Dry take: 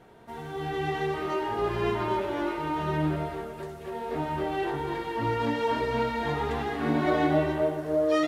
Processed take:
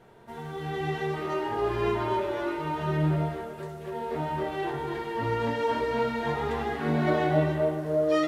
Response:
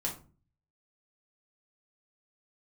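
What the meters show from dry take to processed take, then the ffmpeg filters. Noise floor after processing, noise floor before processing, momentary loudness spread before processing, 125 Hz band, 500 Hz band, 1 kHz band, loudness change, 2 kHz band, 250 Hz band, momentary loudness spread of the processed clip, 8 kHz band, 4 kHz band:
-41 dBFS, -41 dBFS, 10 LU, +3.0 dB, +0.5 dB, -1.0 dB, 0.0 dB, -0.5 dB, -1.0 dB, 11 LU, no reading, -1.5 dB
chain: -filter_complex "[0:a]asplit=2[s0][s1];[1:a]atrim=start_sample=2205[s2];[s1][s2]afir=irnorm=-1:irlink=0,volume=0.447[s3];[s0][s3]amix=inputs=2:normalize=0,volume=0.631"

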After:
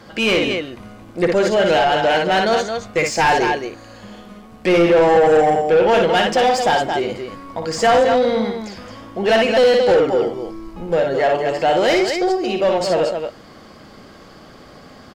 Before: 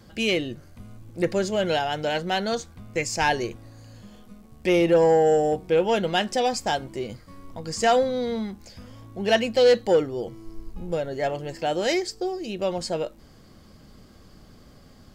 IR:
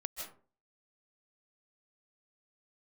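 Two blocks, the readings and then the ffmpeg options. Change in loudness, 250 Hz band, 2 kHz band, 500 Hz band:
+7.5 dB, +6.5 dB, +9.0 dB, +7.5 dB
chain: -filter_complex "[0:a]aecho=1:1:58.31|221.6:0.501|0.355,asplit=2[s0][s1];[1:a]atrim=start_sample=2205,afade=t=out:st=0.19:d=0.01,atrim=end_sample=8820[s2];[s1][s2]afir=irnorm=-1:irlink=0,volume=0.224[s3];[s0][s3]amix=inputs=2:normalize=0,asplit=2[s4][s5];[s5]highpass=f=720:p=1,volume=11.2,asoftclip=type=tanh:threshold=0.531[s6];[s4][s6]amix=inputs=2:normalize=0,lowpass=f=1800:p=1,volume=0.501"

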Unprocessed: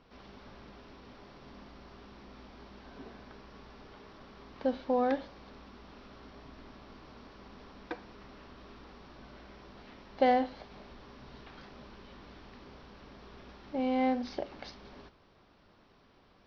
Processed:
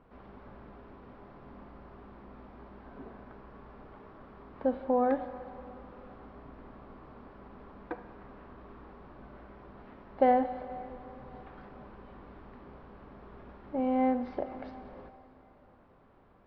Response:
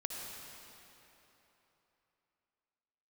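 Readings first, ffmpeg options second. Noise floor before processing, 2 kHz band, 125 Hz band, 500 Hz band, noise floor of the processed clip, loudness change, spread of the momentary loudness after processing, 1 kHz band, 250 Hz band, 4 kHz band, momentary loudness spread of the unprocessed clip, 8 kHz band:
-63 dBFS, -3.0 dB, +2.0 dB, +2.0 dB, -60 dBFS, +0.5 dB, 23 LU, +2.0 dB, +1.5 dB, under -10 dB, 23 LU, no reading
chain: -filter_complex "[0:a]lowpass=1400,asplit=2[s0][s1];[s1]equalizer=f=270:w=0.85:g=-6.5[s2];[1:a]atrim=start_sample=2205[s3];[s2][s3]afir=irnorm=-1:irlink=0,volume=0.473[s4];[s0][s4]amix=inputs=2:normalize=0"

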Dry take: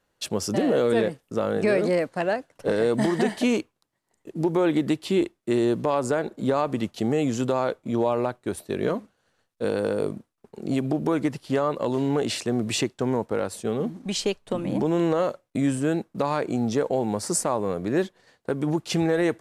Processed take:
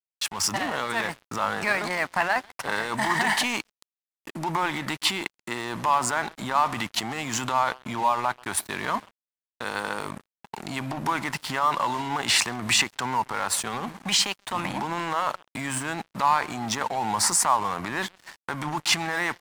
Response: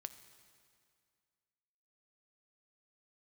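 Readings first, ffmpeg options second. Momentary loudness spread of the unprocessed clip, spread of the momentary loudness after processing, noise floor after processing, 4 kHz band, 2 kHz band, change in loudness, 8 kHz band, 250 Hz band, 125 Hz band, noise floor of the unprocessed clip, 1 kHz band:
6 LU, 11 LU, under -85 dBFS, +8.0 dB, +8.0 dB, -0.5 dB, +7.5 dB, -10.0 dB, -7.0 dB, -76 dBFS, +7.0 dB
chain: -filter_complex "[0:a]asplit=2[s0][s1];[s1]acompressor=threshold=0.0178:ratio=6,volume=1.41[s2];[s0][s2]amix=inputs=2:normalize=0,alimiter=limit=0.0841:level=0:latency=1:release=12,equalizer=f=2000:w=2.9:g=5,asplit=2[s3][s4];[s4]adelay=133,lowpass=f=990:p=1,volume=0.178,asplit=2[s5][s6];[s6]adelay=133,lowpass=f=990:p=1,volume=0.29,asplit=2[s7][s8];[s8]adelay=133,lowpass=f=990:p=1,volume=0.29[s9];[s5][s7][s9]amix=inputs=3:normalize=0[s10];[s3][s10]amix=inputs=2:normalize=0,agate=range=0.0224:threshold=0.00355:ratio=3:detection=peak,highpass=f=69:w=0.5412,highpass=f=69:w=1.3066,lowshelf=f=670:t=q:w=3:g=-11,dynaudnorm=f=170:g=5:m=2,aeval=exprs='sgn(val(0))*max(abs(val(0))-0.00841,0)':c=same,volume=1.68"

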